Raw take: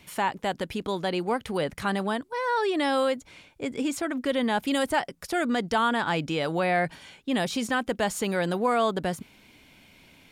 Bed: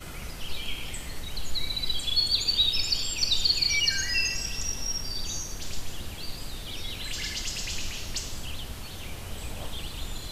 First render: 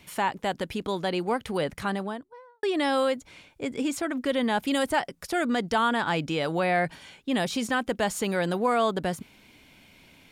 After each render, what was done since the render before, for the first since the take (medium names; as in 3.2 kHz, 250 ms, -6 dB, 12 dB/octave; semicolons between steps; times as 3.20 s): 1.68–2.63 s: studio fade out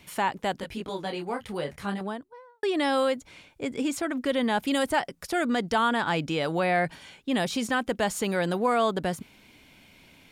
0.60–2.01 s: detune thickener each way 20 cents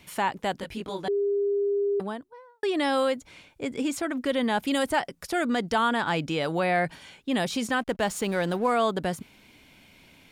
1.08–2.00 s: bleep 403 Hz -22 dBFS; 7.80–8.71 s: hysteresis with a dead band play -40.5 dBFS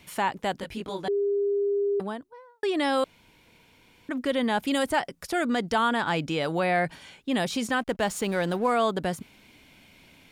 3.04–4.09 s: room tone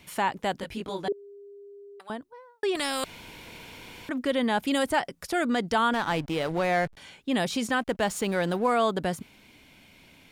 1.12–2.10 s: high-pass 1.4 kHz; 2.75–4.10 s: spectrum-flattening compressor 2:1; 5.93–6.97 s: hysteresis with a dead band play -29.5 dBFS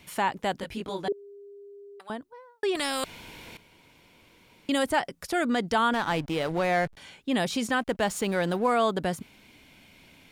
3.57–4.69 s: room tone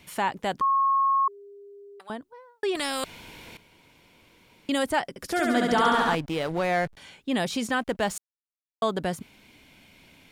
0.61–1.28 s: bleep 1.09 kHz -19 dBFS; 5.09–6.15 s: flutter echo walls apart 11.9 m, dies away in 1.5 s; 8.18–8.82 s: mute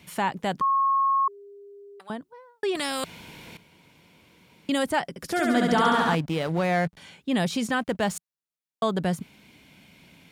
high-pass 50 Hz; peaking EQ 170 Hz +7 dB 0.66 oct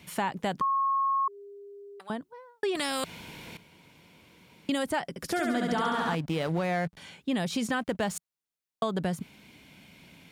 compression 6:1, threshold -25 dBFS, peak gain reduction 8 dB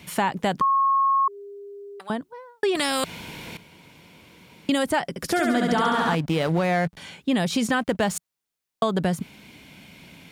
trim +6.5 dB